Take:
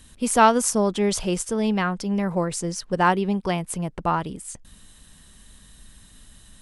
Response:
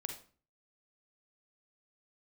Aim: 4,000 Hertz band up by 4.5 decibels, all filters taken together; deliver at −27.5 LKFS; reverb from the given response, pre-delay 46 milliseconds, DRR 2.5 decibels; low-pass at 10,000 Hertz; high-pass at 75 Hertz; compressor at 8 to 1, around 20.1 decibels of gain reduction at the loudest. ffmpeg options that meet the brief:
-filter_complex "[0:a]highpass=75,lowpass=10000,equalizer=frequency=4000:width_type=o:gain=6.5,acompressor=threshold=-31dB:ratio=8,asplit=2[link_01][link_02];[1:a]atrim=start_sample=2205,adelay=46[link_03];[link_02][link_03]afir=irnorm=-1:irlink=0,volume=-1.5dB[link_04];[link_01][link_04]amix=inputs=2:normalize=0,volume=5.5dB"

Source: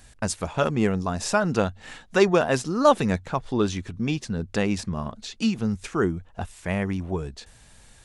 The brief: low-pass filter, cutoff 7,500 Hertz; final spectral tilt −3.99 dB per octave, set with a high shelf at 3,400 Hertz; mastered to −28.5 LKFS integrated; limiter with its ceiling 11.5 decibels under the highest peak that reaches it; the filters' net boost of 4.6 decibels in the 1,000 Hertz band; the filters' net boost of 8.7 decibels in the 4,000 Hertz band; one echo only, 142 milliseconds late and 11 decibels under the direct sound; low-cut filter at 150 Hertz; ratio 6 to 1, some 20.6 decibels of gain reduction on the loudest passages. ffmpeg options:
ffmpeg -i in.wav -af "highpass=150,lowpass=7500,equalizer=frequency=1000:width_type=o:gain=5,highshelf=frequency=3400:gain=3,equalizer=frequency=4000:width_type=o:gain=9,acompressor=threshold=-32dB:ratio=6,alimiter=level_in=3dB:limit=-24dB:level=0:latency=1,volume=-3dB,aecho=1:1:142:0.282,volume=10dB" out.wav

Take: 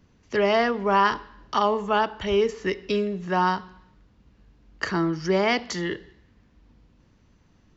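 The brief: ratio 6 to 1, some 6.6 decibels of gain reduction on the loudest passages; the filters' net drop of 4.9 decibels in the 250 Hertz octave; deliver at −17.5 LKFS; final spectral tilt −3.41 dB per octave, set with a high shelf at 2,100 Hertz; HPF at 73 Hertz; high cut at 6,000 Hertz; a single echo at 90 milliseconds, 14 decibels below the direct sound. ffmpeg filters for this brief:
ffmpeg -i in.wav -af "highpass=73,lowpass=6000,equalizer=frequency=250:width_type=o:gain=-7.5,highshelf=frequency=2100:gain=-4,acompressor=threshold=-25dB:ratio=6,aecho=1:1:90:0.2,volume=13.5dB" out.wav

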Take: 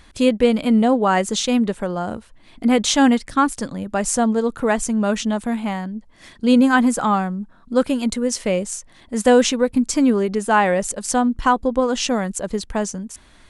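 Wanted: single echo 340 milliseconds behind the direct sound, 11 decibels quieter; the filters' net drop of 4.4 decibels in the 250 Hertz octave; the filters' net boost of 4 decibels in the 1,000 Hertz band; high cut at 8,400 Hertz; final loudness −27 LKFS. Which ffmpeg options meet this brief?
ffmpeg -i in.wav -af "lowpass=8400,equalizer=frequency=250:width_type=o:gain=-5,equalizer=frequency=1000:width_type=o:gain=5.5,aecho=1:1:340:0.282,volume=-7.5dB" out.wav

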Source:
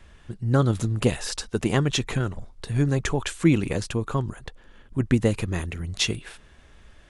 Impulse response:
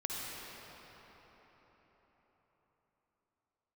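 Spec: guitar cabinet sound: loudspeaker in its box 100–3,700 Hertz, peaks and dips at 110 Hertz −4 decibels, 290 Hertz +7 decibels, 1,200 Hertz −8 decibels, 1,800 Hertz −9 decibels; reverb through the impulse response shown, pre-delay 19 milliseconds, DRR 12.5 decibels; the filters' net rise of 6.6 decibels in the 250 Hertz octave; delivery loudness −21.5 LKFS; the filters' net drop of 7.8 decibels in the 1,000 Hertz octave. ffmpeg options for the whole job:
-filter_complex "[0:a]equalizer=frequency=250:width_type=o:gain=4.5,equalizer=frequency=1000:width_type=o:gain=-7,asplit=2[link_01][link_02];[1:a]atrim=start_sample=2205,adelay=19[link_03];[link_02][link_03]afir=irnorm=-1:irlink=0,volume=-16dB[link_04];[link_01][link_04]amix=inputs=2:normalize=0,highpass=100,equalizer=frequency=110:width_type=q:width=4:gain=-4,equalizer=frequency=290:width_type=q:width=4:gain=7,equalizer=frequency=1200:width_type=q:width=4:gain=-8,equalizer=frequency=1800:width_type=q:width=4:gain=-9,lowpass=frequency=3700:width=0.5412,lowpass=frequency=3700:width=1.3066,volume=0.5dB"

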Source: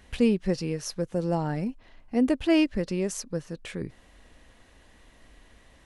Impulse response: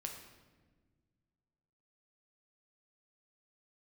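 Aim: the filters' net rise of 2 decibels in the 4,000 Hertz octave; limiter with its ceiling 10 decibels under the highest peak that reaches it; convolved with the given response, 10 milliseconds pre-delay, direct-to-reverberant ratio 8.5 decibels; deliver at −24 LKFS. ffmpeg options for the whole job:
-filter_complex "[0:a]equalizer=frequency=4000:width_type=o:gain=3,alimiter=limit=-21dB:level=0:latency=1,asplit=2[link_01][link_02];[1:a]atrim=start_sample=2205,adelay=10[link_03];[link_02][link_03]afir=irnorm=-1:irlink=0,volume=-6.5dB[link_04];[link_01][link_04]amix=inputs=2:normalize=0,volume=7.5dB"

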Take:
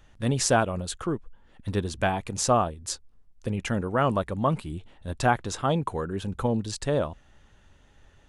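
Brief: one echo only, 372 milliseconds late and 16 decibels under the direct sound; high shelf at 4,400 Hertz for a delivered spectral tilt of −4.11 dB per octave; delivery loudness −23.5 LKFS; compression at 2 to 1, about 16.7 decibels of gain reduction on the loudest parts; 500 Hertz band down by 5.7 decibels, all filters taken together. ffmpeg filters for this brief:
ffmpeg -i in.wav -af "equalizer=frequency=500:width_type=o:gain=-7.5,highshelf=frequency=4400:gain=4,acompressor=threshold=-51dB:ratio=2,aecho=1:1:372:0.158,volume=20dB" out.wav

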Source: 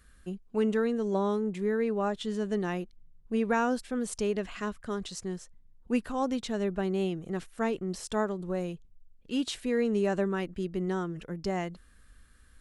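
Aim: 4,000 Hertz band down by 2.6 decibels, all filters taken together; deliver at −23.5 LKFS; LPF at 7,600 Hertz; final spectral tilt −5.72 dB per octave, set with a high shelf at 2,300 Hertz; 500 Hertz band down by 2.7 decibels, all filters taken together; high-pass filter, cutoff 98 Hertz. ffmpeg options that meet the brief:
ffmpeg -i in.wav -af "highpass=98,lowpass=7600,equalizer=frequency=500:width_type=o:gain=-3.5,highshelf=frequency=2300:gain=5.5,equalizer=frequency=4000:width_type=o:gain=-8.5,volume=9.5dB" out.wav

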